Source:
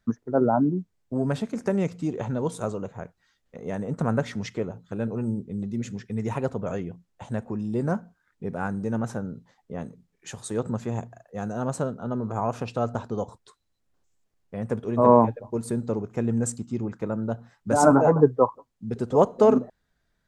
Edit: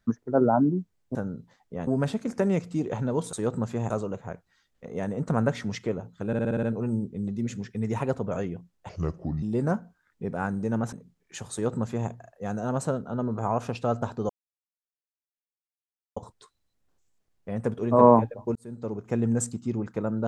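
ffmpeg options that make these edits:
ffmpeg -i in.wav -filter_complex "[0:a]asplit=16[link_01][link_02][link_03][link_04][link_05][link_06][link_07][link_08][link_09][link_10][link_11][link_12][link_13][link_14][link_15][link_16];[link_01]atrim=end=1.152[link_17];[link_02]atrim=start=9.128:end=9.852[link_18];[link_03]atrim=start=1.148:end=2.612[link_19];[link_04]atrim=start=10.448:end=11.022[link_20];[link_05]atrim=start=2.608:end=5.042[link_21];[link_06]atrim=start=4.978:end=5.042[link_22];[link_07]atrim=start=4.978:end=5.042[link_23];[link_08]atrim=start=4.978:end=5.042[link_24];[link_09]atrim=start=4.978:end=5.042[link_25];[link_10]atrim=start=4.978:end=5.042[link_26];[link_11]atrim=start=4.978:end=7.244[link_27];[link_12]atrim=start=7.24:end=7.63,asetpts=PTS-STARTPTS,asetrate=32193,aresample=44100,atrim=end_sample=23560,asetpts=PTS-STARTPTS[link_28];[link_13]atrim=start=7.626:end=9.132[link_29];[link_14]atrim=start=9.848:end=13.22,asetpts=PTS-STARTPTS,afade=type=out:start_time=3.368:duration=0.004:curve=hsin,apad=pad_dur=1.87[link_30];[link_15]atrim=start=13.22:end=15.61,asetpts=PTS-STARTPTS,afade=type=in:duration=0.004:curve=hsin,afade=type=out:start_time=2.386:duration=0.004:curve=hsin[link_31];[link_16]atrim=start=15.61,asetpts=PTS-STARTPTS,afade=type=in:duration=0.59[link_32];[link_17][link_18]acrossfade=duration=0.004:curve1=hsin:curve2=hsin[link_33];[link_33][link_19]acrossfade=duration=0.004:curve1=hsin:curve2=hsin[link_34];[link_34][link_20]acrossfade=duration=0.004:curve1=hsin:curve2=hsin[link_35];[link_35][link_21]acrossfade=duration=0.004:curve1=hsin:curve2=hsin[link_36];[link_36][link_22]acrossfade=duration=0.004:curve1=hsin:curve2=hsin[link_37];[link_37][link_23]acrossfade=duration=0.004:curve1=hsin:curve2=hsin[link_38];[link_38][link_24]acrossfade=duration=0.004:curve1=hsin:curve2=hsin[link_39];[link_39][link_25]acrossfade=duration=0.004:curve1=hsin:curve2=hsin[link_40];[link_40][link_26]acrossfade=duration=0.004:curve1=hsin:curve2=hsin[link_41];[link_41][link_27]acrossfade=duration=0.004:curve1=hsin:curve2=hsin[link_42];[link_42][link_28]acrossfade=duration=0.004:curve1=hsin:curve2=hsin[link_43];[link_43][link_29]acrossfade=duration=0.004:curve1=hsin:curve2=hsin[link_44];[link_30][link_31][link_32]concat=n=3:v=0:a=1[link_45];[link_44][link_45]acrossfade=duration=0.004:curve1=hsin:curve2=hsin" out.wav

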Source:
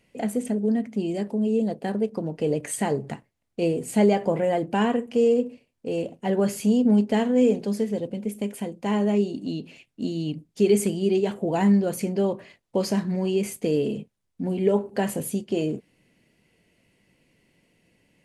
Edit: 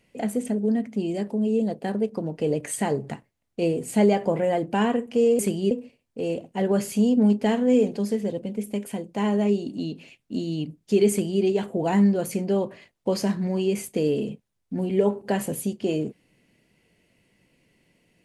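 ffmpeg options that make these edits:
ffmpeg -i in.wav -filter_complex "[0:a]asplit=3[link_01][link_02][link_03];[link_01]atrim=end=5.392[link_04];[link_02]atrim=start=10.778:end=11.102[link_05];[link_03]atrim=start=5.388[link_06];[link_04][link_05]acrossfade=duration=0.004:curve1=hsin:curve2=hsin[link_07];[link_07][link_06]acrossfade=duration=0.004:curve1=hsin:curve2=hsin" out.wav

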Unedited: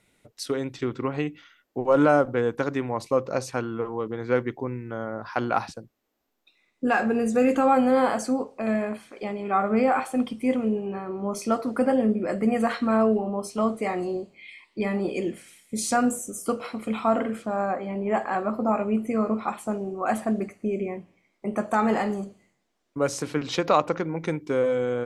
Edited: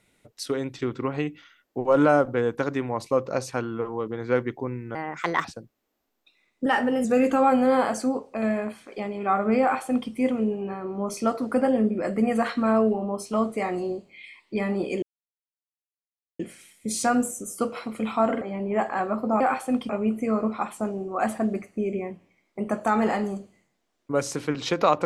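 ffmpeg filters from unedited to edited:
ffmpeg -i in.wav -filter_complex "[0:a]asplit=9[link_01][link_02][link_03][link_04][link_05][link_06][link_07][link_08][link_09];[link_01]atrim=end=4.954[link_10];[link_02]atrim=start=4.95:end=5.65,asetpts=PTS-STARTPTS,asetrate=62181,aresample=44100[link_11];[link_03]atrim=start=5.646:end=6.864[link_12];[link_04]atrim=start=6.86:end=7.29,asetpts=PTS-STARTPTS,asetrate=48951,aresample=44100[link_13];[link_05]atrim=start=7.286:end=15.27,asetpts=PTS-STARTPTS,afade=type=out:start_time=7.98:duration=0.004:curve=hsin,apad=pad_dur=1.37[link_14];[link_06]atrim=start=15.27:end=17.292,asetpts=PTS-STARTPTS,afade=type=in:duration=0.004:curve=hsin[link_15];[link_07]atrim=start=17.768:end=18.762[link_16];[link_08]atrim=start=9.858:end=10.352[link_17];[link_09]atrim=start=18.758[link_18];[link_10][link_11]acrossfade=duration=0.004:curve1=hsin:curve2=hsin[link_19];[link_19][link_12]acrossfade=duration=0.004:curve1=hsin:curve2=hsin[link_20];[link_20][link_13]acrossfade=duration=0.004:curve1=hsin:curve2=hsin[link_21];[link_14][link_15]concat=n=2:v=0:a=1[link_22];[link_21][link_22]acrossfade=duration=0.004:curve1=hsin:curve2=hsin[link_23];[link_23][link_16]acrossfade=duration=0.004:curve1=hsin:curve2=hsin[link_24];[link_24][link_17]acrossfade=duration=0.004:curve1=hsin:curve2=hsin[link_25];[link_25][link_18]acrossfade=duration=0.004:curve1=hsin:curve2=hsin" out.wav

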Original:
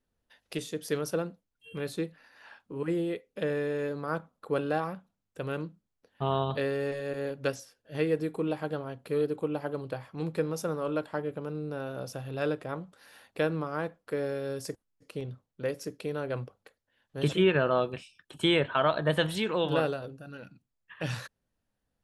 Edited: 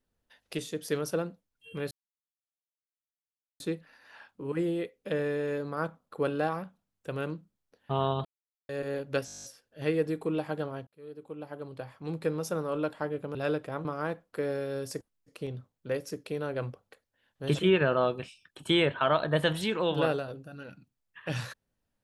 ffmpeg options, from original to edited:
ffmpeg -i in.wav -filter_complex "[0:a]asplit=16[link_01][link_02][link_03][link_04][link_05][link_06][link_07][link_08][link_09][link_10][link_11][link_12][link_13][link_14][link_15][link_16];[link_01]atrim=end=1.91,asetpts=PTS-STARTPTS,afade=type=out:start_time=1.906:duration=0.004:curve=hsin,apad=pad_dur=1.69[link_17];[link_02]atrim=start=1.91:end=6.56,asetpts=PTS-STARTPTS,afade=type=in:duration=0.004:curve=hsin,afade=type=out:start_time=4.646:duration=0.004:curve=hsin[link_18];[link_03]atrim=start=6.56:end=7,asetpts=PTS-STARTPTS,volume=0[link_19];[link_04]atrim=start=7:end=7.592,asetpts=PTS-STARTPTS,afade=type=in:duration=0.004:curve=hsin[link_20];[link_05]atrim=start=7.568:end=7.592[link_21];[link_06]atrim=start=7.568:end=7.592[link_22];[link_07]atrim=start=7.568:end=7.592[link_23];[link_08]atrim=start=7.568:end=7.592[link_24];[link_09]atrim=start=7.568:end=7.592[link_25];[link_10]atrim=start=7.568:end=7.592[link_26];[link_11]atrim=start=7.568:end=7.592[link_27];[link_12]atrim=start=7.568:end=7.592[link_28];[link_13]atrim=start=7.568:end=9,asetpts=PTS-STARTPTS,afade=type=out:start_time=1.428:duration=0.004:curve=hsin[link_29];[link_14]atrim=start=9:end=11.482,asetpts=PTS-STARTPTS,afade=type=in:duration=1.52[link_30];[link_15]atrim=start=12.318:end=12.822[link_31];[link_16]atrim=start=13.588[link_32];[link_17][link_18][link_19][link_20]concat=n=4:v=0:a=1[link_33];[link_33][link_21]acrossfade=duration=0.004:curve1=hsin:curve2=hsin[link_34];[link_34][link_22]acrossfade=duration=0.004:curve1=hsin:curve2=hsin[link_35];[link_35][link_23]acrossfade=duration=0.004:curve1=hsin:curve2=hsin[link_36];[link_36][link_24]acrossfade=duration=0.004:curve1=hsin:curve2=hsin[link_37];[link_37][link_25]acrossfade=duration=0.004:curve1=hsin:curve2=hsin[link_38];[link_38][link_26]acrossfade=duration=0.004:curve1=hsin:curve2=hsin[link_39];[link_39][link_27]acrossfade=duration=0.004:curve1=hsin:curve2=hsin[link_40];[link_40][link_28]acrossfade=duration=0.004:curve1=hsin:curve2=hsin[link_41];[link_29][link_30]concat=n=2:v=0:a=1[link_42];[link_41][link_42]acrossfade=duration=0.004:curve1=hsin:curve2=hsin[link_43];[link_43][link_31]acrossfade=duration=0.004:curve1=hsin:curve2=hsin[link_44];[link_44][link_32]acrossfade=duration=0.004:curve1=hsin:curve2=hsin" out.wav

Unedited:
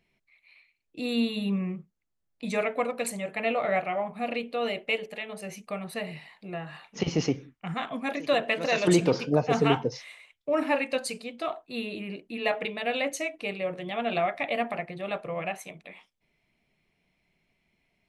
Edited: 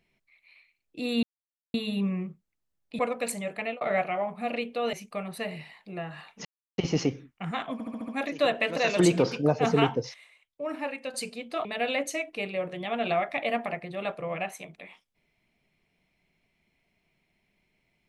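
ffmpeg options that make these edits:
ffmpeg -i in.wav -filter_complex "[0:a]asplit=14[link_01][link_02][link_03][link_04][link_05][link_06][link_07][link_08][link_09][link_10][link_11][link_12][link_13][link_14];[link_01]atrim=end=1.23,asetpts=PTS-STARTPTS,afade=type=out:start_time=1.226:duration=0.004:curve=hsin,apad=pad_dur=0.51[link_15];[link_02]atrim=start=1.23:end=2.482,asetpts=PTS-STARTPTS,afade=type=in:duration=0.004:curve=hsin[link_16];[link_03]atrim=start=2.768:end=3.59,asetpts=PTS-STARTPTS,afade=type=out:start_time=0.502:duration=0.32:curve=qsin[link_17];[link_04]atrim=start=3.59:end=4.712,asetpts=PTS-STARTPTS,afade=type=in:duration=0.004:curve=hsin[link_18];[link_05]atrim=start=5.488:end=7.01,asetpts=PTS-STARTPTS,afade=type=out:start_time=1.518:duration=0.004:curve=hsin,apad=pad_dur=0.33[link_19];[link_06]atrim=start=7.01:end=8.032,asetpts=PTS-STARTPTS,afade=type=in:duration=0.004:curve=hsin[link_20];[link_07]atrim=start=7.958:end=8.032[link_21];[link_08]atrim=start=7.958:end=8.032[link_22];[link_09]atrim=start=7.958:end=8.032[link_23];[link_10]atrim=start=7.958:end=8.032[link_24];[link_11]atrim=start=7.958:end=10.022[link_25];[link_12]atrim=start=10.018:end=11.022,asetpts=PTS-STARTPTS,volume=-7.5dB[link_26];[link_13]atrim=start=11.018:end=11.532[link_27];[link_14]atrim=start=12.708[link_28];[link_15][link_16]concat=n=2:v=0:a=1[link_29];[link_17][link_18]concat=n=2:v=0:a=1[link_30];[link_29][link_30]acrossfade=duration=0.004:curve1=hsin:curve2=hsin[link_31];[link_19][link_20]concat=n=2:v=0:a=1[link_32];[link_31][link_32]acrossfade=duration=0.004:curve1=hsin:curve2=hsin[link_33];[link_33][link_21]acrossfade=duration=0.004:curve1=hsin:curve2=hsin[link_34];[link_34][link_22]acrossfade=duration=0.004:curve1=hsin:curve2=hsin[link_35];[link_35][link_23]acrossfade=duration=0.004:curve1=hsin:curve2=hsin[link_36];[link_36][link_24]acrossfade=duration=0.004:curve1=hsin:curve2=hsin[link_37];[link_37][link_25]acrossfade=duration=0.004:curve1=hsin:curve2=hsin[link_38];[link_38][link_26]acrossfade=duration=0.004:curve1=hsin:curve2=hsin[link_39];[link_39][link_27]acrossfade=duration=0.004:curve1=hsin:curve2=hsin[link_40];[link_40][link_28]acrossfade=duration=0.004:curve1=hsin:curve2=hsin" out.wav

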